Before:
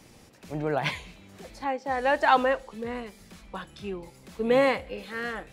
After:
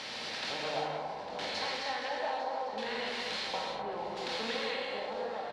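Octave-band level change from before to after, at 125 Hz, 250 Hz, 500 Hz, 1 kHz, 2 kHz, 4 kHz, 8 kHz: -13.0 dB, -12.5 dB, -9.0 dB, -7.5 dB, -6.5 dB, +3.5 dB, no reading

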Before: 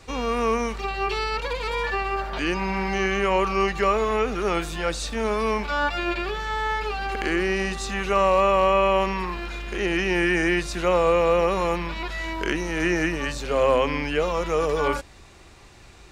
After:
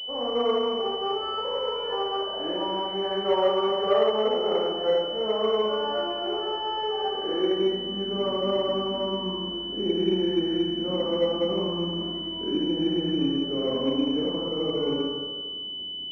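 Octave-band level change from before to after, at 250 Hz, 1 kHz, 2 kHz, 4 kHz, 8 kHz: +0.5 dB, -6.5 dB, -18.0 dB, +7.5 dB, under -25 dB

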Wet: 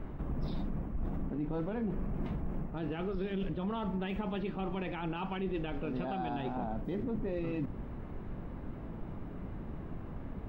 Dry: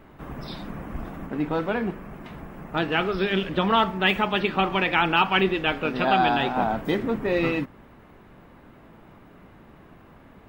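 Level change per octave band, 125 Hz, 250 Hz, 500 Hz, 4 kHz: -4.5 dB, -8.0 dB, -12.0 dB, -22.5 dB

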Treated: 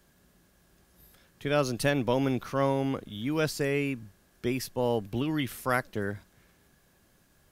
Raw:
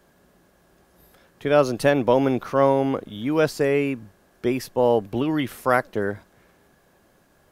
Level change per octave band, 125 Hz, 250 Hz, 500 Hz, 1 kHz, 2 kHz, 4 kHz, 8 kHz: -2.5 dB, -6.0 dB, -9.5 dB, -8.5 dB, -5.0 dB, -2.0 dB, -0.5 dB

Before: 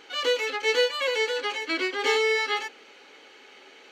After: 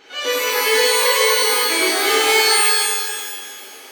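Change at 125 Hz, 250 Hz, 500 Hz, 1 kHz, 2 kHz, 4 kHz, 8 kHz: no reading, +7.5 dB, +6.5 dB, +11.0 dB, +8.5 dB, +11.5 dB, +22.0 dB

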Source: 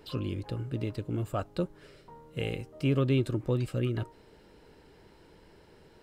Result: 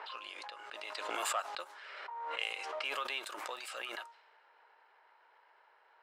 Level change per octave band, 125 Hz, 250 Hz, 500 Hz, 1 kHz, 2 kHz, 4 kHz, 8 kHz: under -40 dB, -26.5 dB, -11.5 dB, +5.0 dB, +5.0 dB, +4.0 dB, no reading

